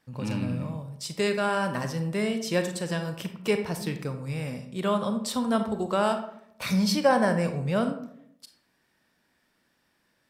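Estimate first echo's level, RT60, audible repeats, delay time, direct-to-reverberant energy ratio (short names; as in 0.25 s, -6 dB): none, 0.70 s, none, none, 7.0 dB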